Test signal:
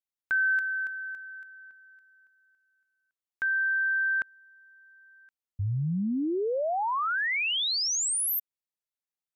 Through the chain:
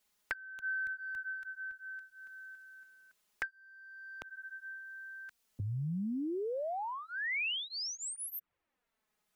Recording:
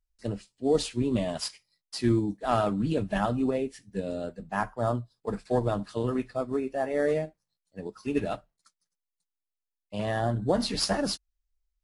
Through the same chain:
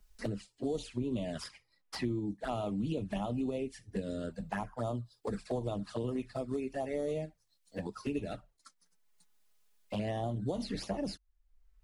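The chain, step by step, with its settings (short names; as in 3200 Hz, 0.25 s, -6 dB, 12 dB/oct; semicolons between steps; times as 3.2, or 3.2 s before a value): compressor 2.5:1, threshold -33 dBFS; envelope flanger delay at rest 4.8 ms, full sweep at -29.5 dBFS; three-band squash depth 70%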